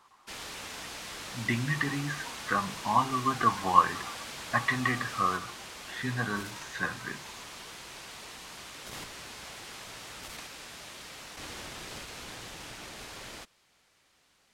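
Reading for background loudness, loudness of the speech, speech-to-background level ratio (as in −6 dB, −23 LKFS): −41.0 LKFS, −30.0 LKFS, 11.0 dB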